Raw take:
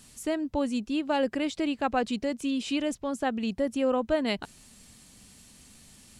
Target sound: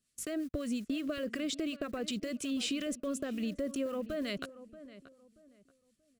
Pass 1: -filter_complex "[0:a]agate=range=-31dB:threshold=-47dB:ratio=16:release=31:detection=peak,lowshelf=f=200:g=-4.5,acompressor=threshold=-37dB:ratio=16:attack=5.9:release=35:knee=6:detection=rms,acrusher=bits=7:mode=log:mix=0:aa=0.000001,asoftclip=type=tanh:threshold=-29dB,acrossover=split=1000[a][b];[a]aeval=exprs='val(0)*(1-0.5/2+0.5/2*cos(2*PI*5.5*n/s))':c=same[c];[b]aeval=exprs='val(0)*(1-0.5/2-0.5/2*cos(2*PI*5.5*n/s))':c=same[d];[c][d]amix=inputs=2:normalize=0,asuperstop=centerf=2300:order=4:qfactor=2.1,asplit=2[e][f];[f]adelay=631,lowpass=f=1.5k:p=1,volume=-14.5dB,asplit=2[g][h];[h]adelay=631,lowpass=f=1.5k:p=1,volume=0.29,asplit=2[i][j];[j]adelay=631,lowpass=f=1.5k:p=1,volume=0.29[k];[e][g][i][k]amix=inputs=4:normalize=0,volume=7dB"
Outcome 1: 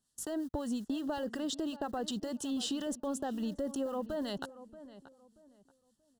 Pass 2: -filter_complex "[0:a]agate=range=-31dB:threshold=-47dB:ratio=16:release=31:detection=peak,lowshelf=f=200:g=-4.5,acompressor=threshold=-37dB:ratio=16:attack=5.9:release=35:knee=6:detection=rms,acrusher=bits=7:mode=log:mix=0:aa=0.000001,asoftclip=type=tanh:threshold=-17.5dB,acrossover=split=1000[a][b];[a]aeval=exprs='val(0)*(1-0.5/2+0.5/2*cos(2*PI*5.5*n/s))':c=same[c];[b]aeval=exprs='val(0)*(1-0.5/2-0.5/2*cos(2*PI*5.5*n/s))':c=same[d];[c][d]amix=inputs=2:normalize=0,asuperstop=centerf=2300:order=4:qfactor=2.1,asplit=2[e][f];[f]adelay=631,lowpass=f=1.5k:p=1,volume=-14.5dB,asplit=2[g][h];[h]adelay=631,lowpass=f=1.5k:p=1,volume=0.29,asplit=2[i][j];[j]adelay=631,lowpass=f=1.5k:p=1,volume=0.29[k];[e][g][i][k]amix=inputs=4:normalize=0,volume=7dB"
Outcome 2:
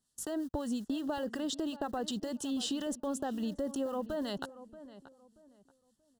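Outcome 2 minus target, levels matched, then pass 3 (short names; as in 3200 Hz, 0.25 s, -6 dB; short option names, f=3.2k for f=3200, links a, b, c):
1000 Hz band +8.0 dB
-filter_complex "[0:a]agate=range=-31dB:threshold=-47dB:ratio=16:release=31:detection=peak,lowshelf=f=200:g=-4.5,acompressor=threshold=-37dB:ratio=16:attack=5.9:release=35:knee=6:detection=rms,acrusher=bits=7:mode=log:mix=0:aa=0.000001,asoftclip=type=tanh:threshold=-17.5dB,acrossover=split=1000[a][b];[a]aeval=exprs='val(0)*(1-0.5/2+0.5/2*cos(2*PI*5.5*n/s))':c=same[c];[b]aeval=exprs='val(0)*(1-0.5/2-0.5/2*cos(2*PI*5.5*n/s))':c=same[d];[c][d]amix=inputs=2:normalize=0,asuperstop=centerf=870:order=4:qfactor=2.1,asplit=2[e][f];[f]adelay=631,lowpass=f=1.5k:p=1,volume=-14.5dB,asplit=2[g][h];[h]adelay=631,lowpass=f=1.5k:p=1,volume=0.29,asplit=2[i][j];[j]adelay=631,lowpass=f=1.5k:p=1,volume=0.29[k];[e][g][i][k]amix=inputs=4:normalize=0,volume=7dB"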